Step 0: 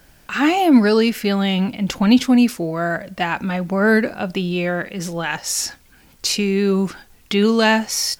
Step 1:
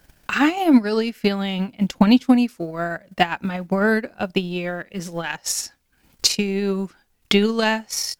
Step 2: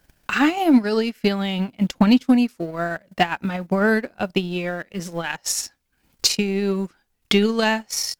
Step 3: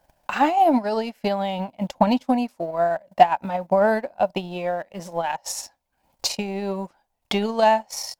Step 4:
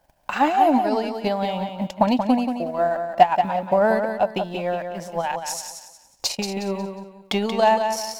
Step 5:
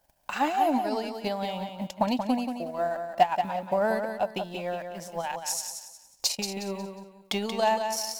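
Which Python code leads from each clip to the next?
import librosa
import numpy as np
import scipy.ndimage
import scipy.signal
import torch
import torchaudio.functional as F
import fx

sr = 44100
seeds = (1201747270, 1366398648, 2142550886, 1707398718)

y1 = fx.transient(x, sr, attack_db=12, sustain_db=-11)
y1 = y1 * librosa.db_to_amplitude(-6.0)
y2 = fx.leveller(y1, sr, passes=1)
y2 = y2 * librosa.db_to_amplitude(-3.5)
y3 = fx.band_shelf(y2, sr, hz=740.0, db=14.0, octaves=1.1)
y3 = y3 * librosa.db_to_amplitude(-6.5)
y4 = fx.echo_feedback(y3, sr, ms=181, feedback_pct=33, wet_db=-7.0)
y5 = fx.high_shelf(y4, sr, hz=4100.0, db=9.5)
y5 = y5 * librosa.db_to_amplitude(-7.5)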